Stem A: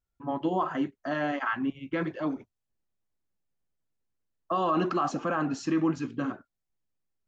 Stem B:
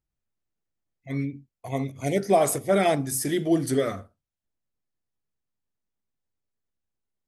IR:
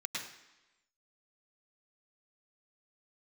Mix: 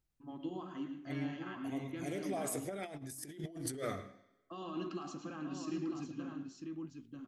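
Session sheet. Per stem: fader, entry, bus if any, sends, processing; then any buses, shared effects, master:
-16.0 dB, 0.00 s, send -4 dB, echo send -3.5 dB, high-order bell 990 Hz -9.5 dB 2.6 oct
-1.5 dB, 0.00 s, send -20.5 dB, no echo send, peak limiter -19 dBFS, peak gain reduction 10 dB; auto duck -15 dB, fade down 1.40 s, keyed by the first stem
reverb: on, RT60 1.0 s, pre-delay 98 ms
echo: delay 945 ms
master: compressor with a negative ratio -38 dBFS, ratio -0.5

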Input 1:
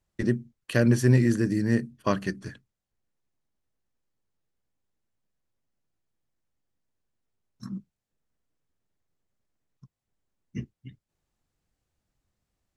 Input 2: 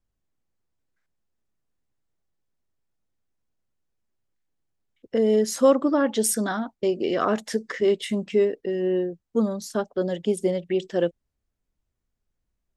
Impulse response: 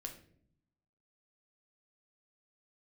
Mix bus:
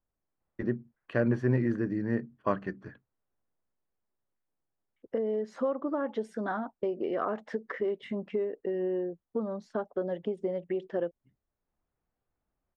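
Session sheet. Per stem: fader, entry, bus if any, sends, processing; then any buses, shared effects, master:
+0.5 dB, 0.40 s, no send, auto duck -21 dB, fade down 1.65 s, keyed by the second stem
+1.5 dB, 0.00 s, no send, compression 6:1, threshold -25 dBFS, peak gain reduction 12.5 dB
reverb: none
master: low-pass 1.3 kHz 12 dB/octave; bass shelf 310 Hz -10.5 dB

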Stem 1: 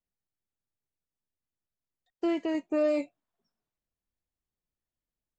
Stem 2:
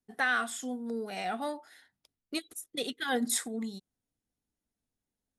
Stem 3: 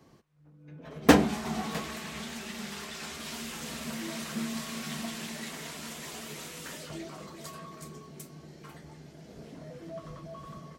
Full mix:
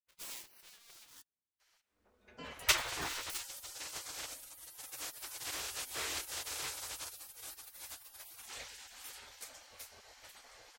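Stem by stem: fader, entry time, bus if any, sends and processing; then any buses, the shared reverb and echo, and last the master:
-1.0 dB, 0.15 s, no send, detune thickener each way 11 cents
-12.5 dB, 0.00 s, muted 1.22–2.59 s, no send, square wave that keeps the level; peaking EQ 82 Hz -12 dB 2.4 oct
-1.5 dB, 1.60 s, no send, level rider gain up to 5 dB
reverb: none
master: peaking EQ 570 Hz -2.5 dB 2.7 oct; spectral gate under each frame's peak -20 dB weak

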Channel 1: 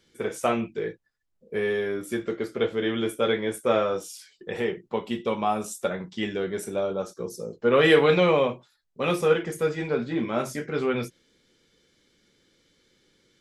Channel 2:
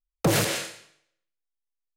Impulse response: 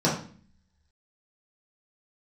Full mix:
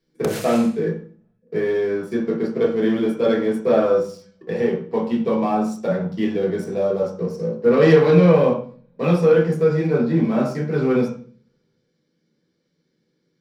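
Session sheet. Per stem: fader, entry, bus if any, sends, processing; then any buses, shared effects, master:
-14.0 dB, 0.00 s, send -6.5 dB, treble shelf 9 kHz -8.5 dB; waveshaping leveller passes 2
+3.0 dB, 0.00 s, no send, compression 4:1, threshold -26 dBFS, peak gain reduction 7 dB; auto duck -19 dB, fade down 1.30 s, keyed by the first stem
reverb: on, RT60 0.45 s, pre-delay 3 ms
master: none

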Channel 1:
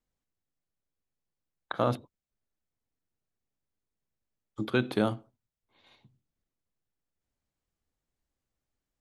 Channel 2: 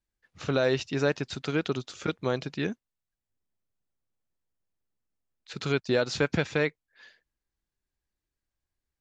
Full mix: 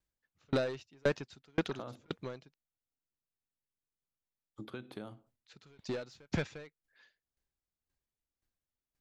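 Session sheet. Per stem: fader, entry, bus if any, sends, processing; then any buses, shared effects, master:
-10.5 dB, 0.00 s, no send, compression 6:1, threshold -30 dBFS, peak gain reduction 10 dB
+2.5 dB, 0.00 s, muted 2.54–4.99 s, no send, saturation -23 dBFS, distortion -11 dB; sawtooth tremolo in dB decaying 1.9 Hz, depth 39 dB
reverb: none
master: none

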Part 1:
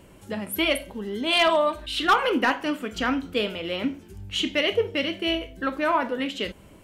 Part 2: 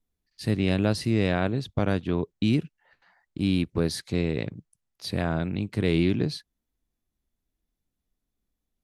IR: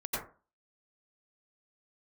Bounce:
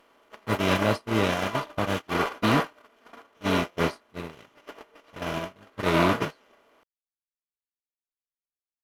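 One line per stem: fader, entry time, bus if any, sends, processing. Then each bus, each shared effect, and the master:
-9.5 dB, 0.00 s, send -8.5 dB, spectral levelling over time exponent 0.2; sliding maximum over 5 samples; auto duck -8 dB, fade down 0.65 s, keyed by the second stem
+1.5 dB, 0.00 s, no send, level-controlled noise filter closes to 1.5 kHz, open at -21.5 dBFS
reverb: on, RT60 0.35 s, pre-delay 82 ms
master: gate -19 dBFS, range -35 dB; bass shelf 320 Hz -4.5 dB

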